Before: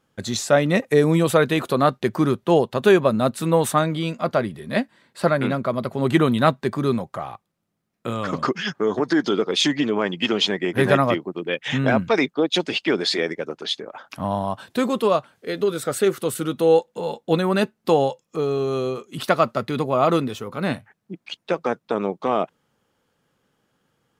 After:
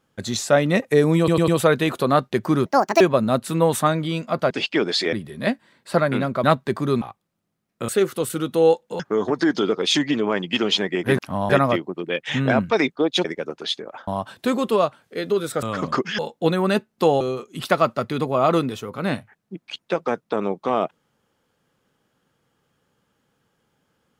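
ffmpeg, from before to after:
-filter_complex "[0:a]asplit=19[a][b][c][d][e][f][g][h][i][j][k][l][m][n][o][p][q][r][s];[a]atrim=end=1.282[t];[b]atrim=start=1.178:end=1.282[u];[c]atrim=start=1.178:end=1.282[v];[d]atrim=start=1.178:end=2.364[w];[e]atrim=start=2.36:end=2.92,asetpts=PTS-STARTPTS,asetrate=71442,aresample=44100,atrim=end_sample=15244,asetpts=PTS-STARTPTS[x];[f]atrim=start=2.916:end=4.422[y];[g]atrim=start=12.628:end=13.252[z];[h]atrim=start=4.418:end=5.732[aa];[i]atrim=start=6.398:end=6.982[ab];[j]atrim=start=7.258:end=8.132[ac];[k]atrim=start=15.938:end=17.052[ad];[l]atrim=start=8.688:end=10.882[ae];[m]atrim=start=14.078:end=14.392[af];[n]atrim=start=10.878:end=12.632[ag];[o]atrim=start=13.248:end=14.082[ah];[p]atrim=start=14.388:end=15.942[ai];[q]atrim=start=8.128:end=8.692[aj];[r]atrim=start=17.048:end=18.072[ak];[s]atrim=start=18.788[al];[t][u]acrossfade=d=0.004:c1=hsin:c2=hsin[am];[am][v]acrossfade=d=0.004:c1=hsin:c2=hsin[an];[an][w]acrossfade=d=0.004:c1=hsin:c2=hsin[ao];[ao][x]acrossfade=d=0.004:c1=hsin:c2=hsin[ap];[ap][y]acrossfade=d=0.004:c1=hsin:c2=hsin[aq];[aq][z]acrossfade=d=0.004:c1=hsin:c2=hsin[ar];[ar][aa]acrossfade=d=0.004:c1=hsin:c2=hsin[as];[as][ab]acrossfade=d=0.004:c1=hsin:c2=hsin[at];[at][ac]acrossfade=d=0.004:c1=hsin:c2=hsin[au];[au][ad]acrossfade=d=0.004:c1=hsin:c2=hsin[av];[av][ae]acrossfade=d=0.004:c1=hsin:c2=hsin[aw];[aw][af]acrossfade=d=0.004:c1=hsin:c2=hsin[ax];[ax][ag]acrossfade=d=0.004:c1=hsin:c2=hsin[ay];[ay][ah]acrossfade=d=0.004:c1=hsin:c2=hsin[az];[az][ai]acrossfade=d=0.004:c1=hsin:c2=hsin[ba];[ba][aj]acrossfade=d=0.004:c1=hsin:c2=hsin[bb];[bb][ak]acrossfade=d=0.004:c1=hsin:c2=hsin[bc];[bc][al]acrossfade=d=0.004:c1=hsin:c2=hsin"

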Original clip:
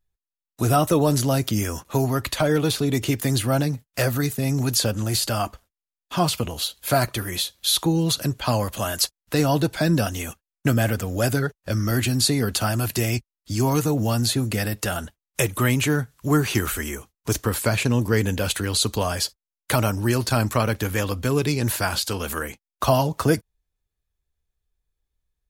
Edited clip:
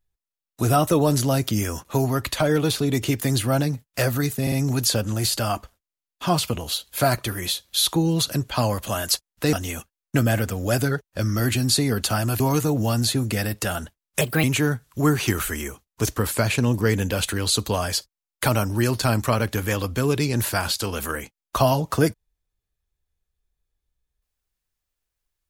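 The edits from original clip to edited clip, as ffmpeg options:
-filter_complex "[0:a]asplit=7[a][b][c][d][e][f][g];[a]atrim=end=4.472[h];[b]atrim=start=4.418:end=4.472[i];[c]atrim=start=4.418:end=9.432[j];[d]atrim=start=10.038:end=12.912[k];[e]atrim=start=13.608:end=15.424[l];[f]atrim=start=15.42:end=15.71,asetpts=PTS-STARTPTS,asetrate=56448,aresample=44100,atrim=end_sample=9991,asetpts=PTS-STARTPTS[m];[g]atrim=start=15.706[n];[h][i]acrossfade=d=0.004:c1=hsin:c2=hsin[o];[o][j]acrossfade=d=0.004:c1=hsin:c2=hsin[p];[p][k]acrossfade=d=0.004:c1=hsin:c2=hsin[q];[q][l]acrossfade=d=0.004:c1=hsin:c2=hsin[r];[r][m]acrossfade=d=0.004:c1=hsin:c2=hsin[s];[s][n]acrossfade=d=0.004:c1=hsin:c2=hsin"

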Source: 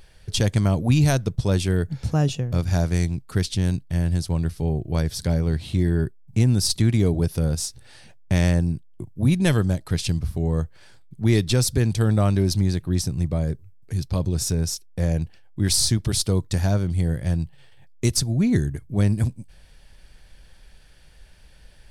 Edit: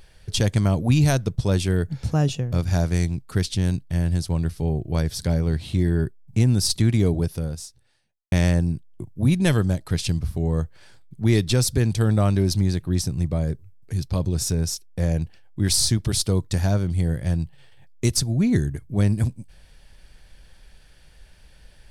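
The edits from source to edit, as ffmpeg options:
-filter_complex "[0:a]asplit=2[a][b];[a]atrim=end=8.32,asetpts=PTS-STARTPTS,afade=t=out:st=7.13:d=1.19:c=qua[c];[b]atrim=start=8.32,asetpts=PTS-STARTPTS,afade=t=in:d=0.004:c=hsin[d];[c][d]concat=n=2:v=0:a=1"

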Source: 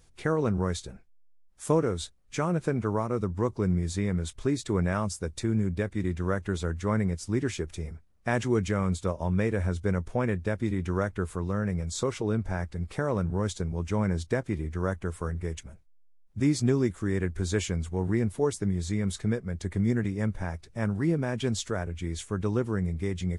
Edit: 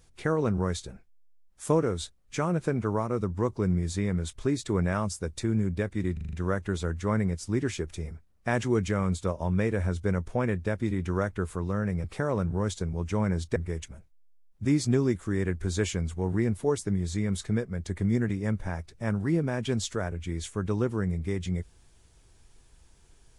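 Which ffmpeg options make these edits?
-filter_complex "[0:a]asplit=8[a][b][c][d][e][f][g][h];[a]atrim=end=6.172[i];[b]atrim=start=6.128:end=6.172[j];[c]atrim=start=6.128:end=6.172[k];[d]atrim=start=6.128:end=6.172[l];[e]atrim=start=6.128:end=6.172[m];[f]atrim=start=6.128:end=11.842[n];[g]atrim=start=12.828:end=14.352[o];[h]atrim=start=15.308[p];[i][j]acrossfade=d=0.004:c1=hsin:c2=hsin[q];[q][k]acrossfade=d=0.004:c1=hsin:c2=hsin[r];[r][l]acrossfade=d=0.004:c1=hsin:c2=hsin[s];[s][m]acrossfade=d=0.004:c1=hsin:c2=hsin[t];[t][n]acrossfade=d=0.004:c1=hsin:c2=hsin[u];[u][o]acrossfade=d=0.004:c1=hsin:c2=hsin[v];[v][p]acrossfade=d=0.004:c1=hsin:c2=hsin"

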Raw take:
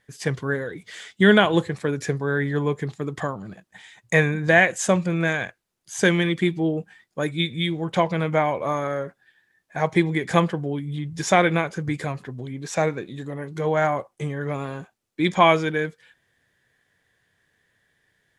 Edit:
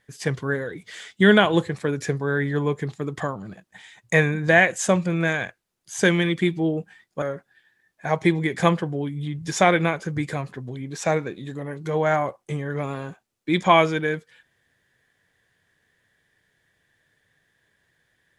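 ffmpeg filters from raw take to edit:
-filter_complex "[0:a]asplit=2[a][b];[a]atrim=end=7.222[c];[b]atrim=start=8.928[d];[c][d]acrossfade=d=0.004:c1=hsin:c2=hsin"

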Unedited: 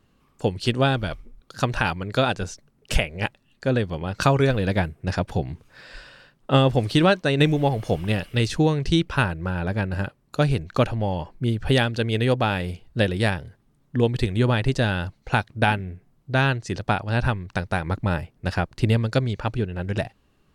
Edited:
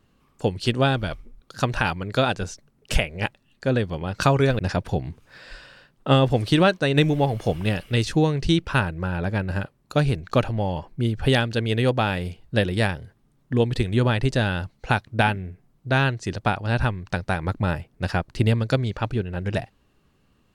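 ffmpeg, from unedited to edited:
-filter_complex "[0:a]asplit=2[a][b];[a]atrim=end=4.592[c];[b]atrim=start=5.018[d];[c][d]acrossfade=d=0.004:c1=hsin:c2=hsin"

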